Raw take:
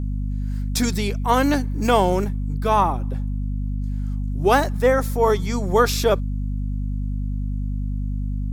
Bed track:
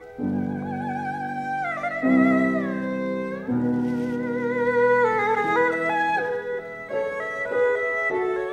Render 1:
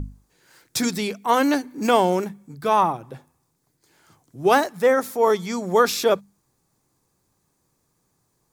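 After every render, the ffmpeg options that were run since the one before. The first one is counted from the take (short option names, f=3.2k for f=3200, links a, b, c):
-af "bandreject=f=50:t=h:w=6,bandreject=f=100:t=h:w=6,bandreject=f=150:t=h:w=6,bandreject=f=200:t=h:w=6,bandreject=f=250:t=h:w=6"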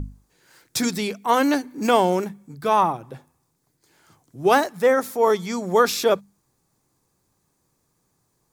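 -af anull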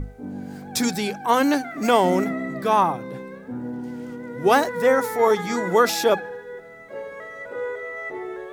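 -filter_complex "[1:a]volume=-8dB[a];[0:a][a]amix=inputs=2:normalize=0"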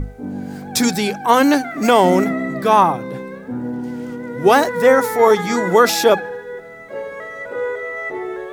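-af "volume=6dB,alimiter=limit=-1dB:level=0:latency=1"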